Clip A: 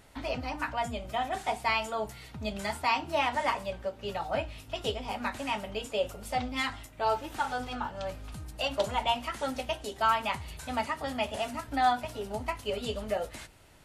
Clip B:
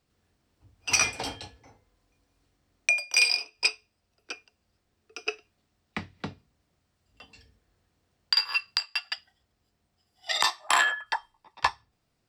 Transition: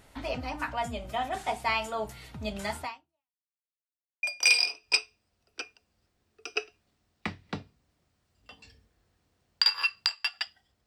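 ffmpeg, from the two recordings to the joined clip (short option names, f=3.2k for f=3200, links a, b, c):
-filter_complex "[0:a]apad=whole_dur=10.86,atrim=end=10.86,asplit=2[a][b];[a]atrim=end=3.43,asetpts=PTS-STARTPTS,afade=t=out:st=2.82:d=0.61:c=exp[c];[b]atrim=start=3.43:end=4.23,asetpts=PTS-STARTPTS,volume=0[d];[1:a]atrim=start=2.94:end=9.57,asetpts=PTS-STARTPTS,afade=t=in:d=0.004:c=hsin[e];[c][d][e]concat=n=3:v=0:a=1"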